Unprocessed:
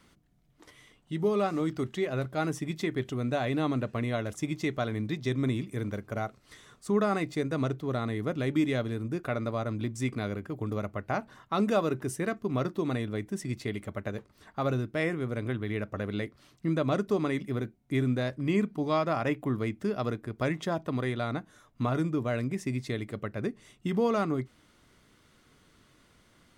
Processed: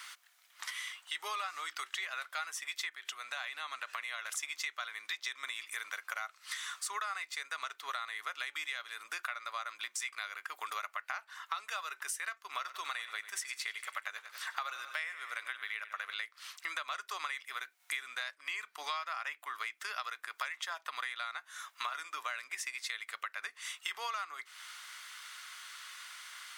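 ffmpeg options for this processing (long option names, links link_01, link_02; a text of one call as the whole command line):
ffmpeg -i in.wav -filter_complex "[0:a]asettb=1/sr,asplit=3[link_01][link_02][link_03];[link_01]atrim=end=2.894[link_04];[link_02]atrim=start=2.89:end=4.39,asetpts=PTS-STARTPTS,afade=type=in:duration=0.004:curve=qsin,afade=type=out:start_time=1.496:duration=0.004:curve=qsin,acompressor=threshold=-36dB:ratio=6:attack=3.2:release=140:knee=1:detection=peak[link_05];[link_03]atrim=start=4.386[link_06];[link_04][link_05]acrossfade=duration=0.004:curve1=hsin:curve2=qsin[link_07];[link_07][link_06]acrossfade=duration=0.004:curve1=qsin:curve2=hsin,asettb=1/sr,asplit=3[link_08][link_09][link_10];[link_08]atrim=end=12.414[link_11];[link_09]atrim=start=12.41:end=16.14,asetpts=PTS-STARTPTS,afade=type=in:duration=0.004:curve=qsin,afade=type=out:start_time=3.726:duration=0.004:curve=qsin,aecho=1:1:94|188|282|376|470:0.178|0.096|0.0519|0.028|0.0151,atrim=end_sample=164493[link_12];[link_10]atrim=start=16.136[link_13];[link_11][link_12]acrossfade=duration=0.004:curve1=hsin:curve2=qsin[link_14];[link_14][link_13]acrossfade=duration=0.004:curve1=qsin:curve2=hsin,asplit=3[link_15][link_16][link_17];[link_15]atrim=end=17.802[link_18];[link_16]atrim=start=17.798:end=18.312,asetpts=PTS-STARTPTS,volume=3.5dB[link_19];[link_17]atrim=start=18.308[link_20];[link_18][link_19]acrossfade=duration=0.004:curve1=hsin:curve2=hsin[link_21];[link_21][link_20]acrossfade=duration=0.004:curve1=hsin:curve2=hsin,highpass=frequency=1200:width=0.5412,highpass=frequency=1200:width=1.3066,acompressor=threshold=-54dB:ratio=10,volume=18dB" out.wav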